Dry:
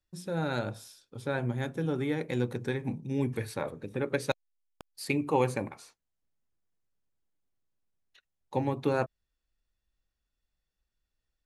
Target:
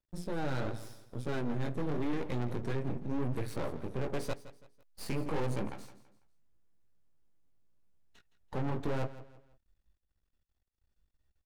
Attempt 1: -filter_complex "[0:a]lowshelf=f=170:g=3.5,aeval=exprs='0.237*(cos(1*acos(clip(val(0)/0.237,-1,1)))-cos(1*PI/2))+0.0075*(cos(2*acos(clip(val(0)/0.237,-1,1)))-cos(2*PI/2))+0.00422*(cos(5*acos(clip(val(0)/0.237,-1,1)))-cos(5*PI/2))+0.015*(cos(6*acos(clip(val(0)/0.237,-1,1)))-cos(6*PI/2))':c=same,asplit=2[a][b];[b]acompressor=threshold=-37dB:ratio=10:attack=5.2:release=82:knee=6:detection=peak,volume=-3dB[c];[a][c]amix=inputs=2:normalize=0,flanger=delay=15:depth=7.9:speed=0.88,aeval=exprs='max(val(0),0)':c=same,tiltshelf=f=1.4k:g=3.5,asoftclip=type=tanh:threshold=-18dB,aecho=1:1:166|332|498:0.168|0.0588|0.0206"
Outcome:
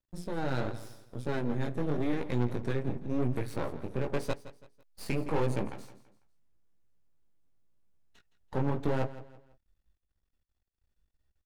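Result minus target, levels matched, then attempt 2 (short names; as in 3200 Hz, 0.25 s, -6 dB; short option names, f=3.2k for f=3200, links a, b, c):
compressor: peak gain reduction +6.5 dB; soft clip: distortion -7 dB
-filter_complex "[0:a]lowshelf=f=170:g=3.5,aeval=exprs='0.237*(cos(1*acos(clip(val(0)/0.237,-1,1)))-cos(1*PI/2))+0.0075*(cos(2*acos(clip(val(0)/0.237,-1,1)))-cos(2*PI/2))+0.00422*(cos(5*acos(clip(val(0)/0.237,-1,1)))-cos(5*PI/2))+0.015*(cos(6*acos(clip(val(0)/0.237,-1,1)))-cos(6*PI/2))':c=same,asplit=2[a][b];[b]acompressor=threshold=-30dB:ratio=10:attack=5.2:release=82:knee=6:detection=peak,volume=-3dB[c];[a][c]amix=inputs=2:normalize=0,flanger=delay=15:depth=7.9:speed=0.88,aeval=exprs='max(val(0),0)':c=same,tiltshelf=f=1.4k:g=3.5,asoftclip=type=tanh:threshold=-25.5dB,aecho=1:1:166|332|498:0.168|0.0588|0.0206"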